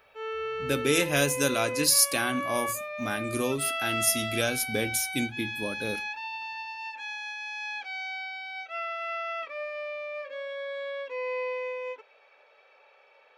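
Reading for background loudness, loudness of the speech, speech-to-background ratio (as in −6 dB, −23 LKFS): −33.5 LKFS, −27.0 LKFS, 6.5 dB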